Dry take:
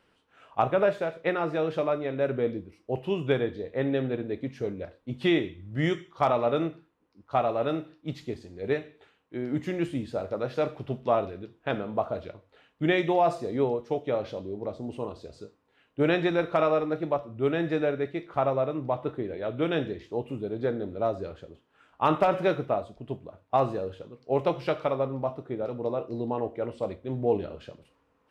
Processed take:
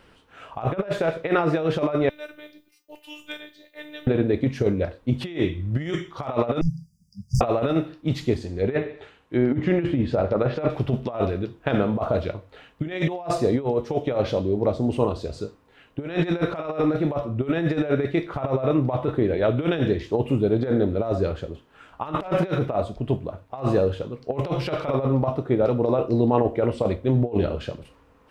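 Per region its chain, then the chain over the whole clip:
2.09–4.07 s: differentiator + robot voice 299 Hz
6.61–7.41 s: overdrive pedal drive 26 dB, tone 1.8 kHz, clips at -11.5 dBFS + brick-wall FIR band-stop 210–4700 Hz
8.36–10.70 s: low-pass that closes with the level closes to 2.6 kHz, closed at -27.5 dBFS + feedback delay 78 ms, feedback 46%, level -18.5 dB
whole clip: bass shelf 78 Hz +11 dB; compressor with a negative ratio -29 dBFS, ratio -0.5; trim +8 dB

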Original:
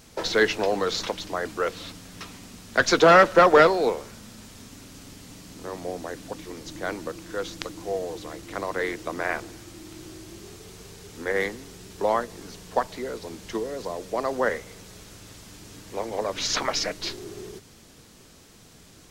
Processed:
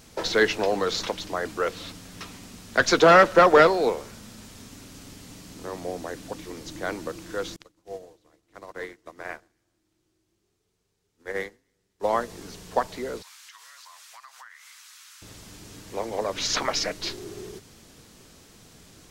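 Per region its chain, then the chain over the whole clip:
7.56–12.13 s: echo whose repeats swap between lows and highs 131 ms, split 1.7 kHz, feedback 55%, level -14 dB + upward expansion 2.5:1, over -41 dBFS
13.22–15.22 s: steep high-pass 1.1 kHz + compression, threshold -44 dBFS
whole clip: none

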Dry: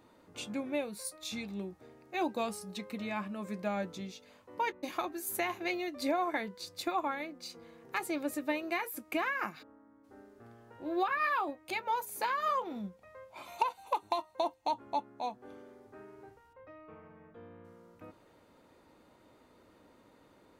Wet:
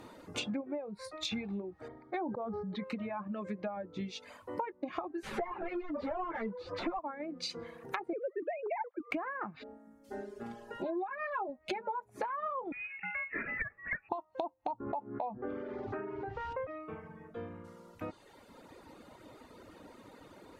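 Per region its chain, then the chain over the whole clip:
1.88–2.84 s: Butterworth band-stop 2.7 kHz, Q 3.8 + distance through air 320 m + decay stretcher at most 32 dB/s
5.23–6.99 s: overdrive pedal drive 30 dB, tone 3.2 kHz, clips at -20.5 dBFS + three-phase chorus
8.13–9.11 s: formants replaced by sine waves + upward compressor, threshold -45 dBFS
9.62–12.04 s: band-stop 1.2 kHz, Q 7.7 + comb 4.9 ms, depth 89%
12.72–14.09 s: companding laws mixed up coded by mu + band-stop 1.1 kHz, Q 23 + frequency inversion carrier 2.7 kHz
14.80–16.67 s: distance through air 120 m + level flattener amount 50%
whole clip: low-pass that closes with the level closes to 1.1 kHz, closed at -33.5 dBFS; compression 12:1, threshold -44 dBFS; reverb removal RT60 1.4 s; trim +11 dB

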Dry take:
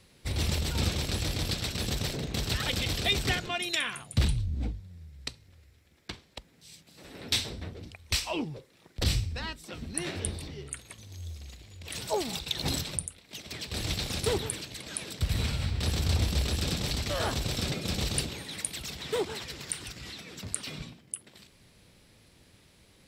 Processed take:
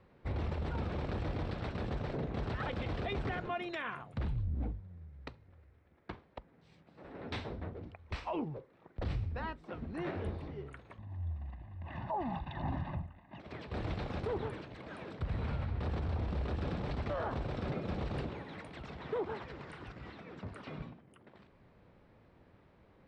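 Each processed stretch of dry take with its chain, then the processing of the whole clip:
10.98–13.40 s: low-pass 2.2 kHz + comb 1.1 ms, depth 92%
whole clip: Chebyshev low-pass 1.1 kHz, order 2; bass shelf 360 Hz -5 dB; peak limiter -30.5 dBFS; trim +2.5 dB

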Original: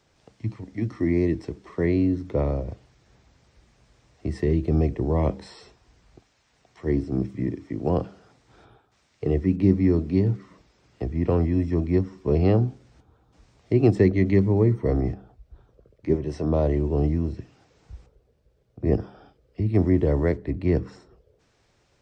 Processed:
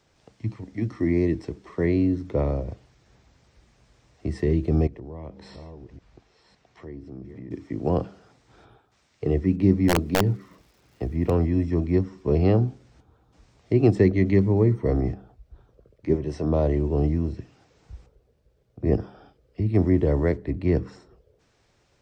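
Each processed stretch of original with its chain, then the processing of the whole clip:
4.87–7.51 s: chunks repeated in reverse 560 ms, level -13 dB + compression 3:1, threshold -40 dBFS + distance through air 72 m
9.88–11.28 s: crackle 370 per s -52 dBFS + integer overflow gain 12 dB
whole clip: none

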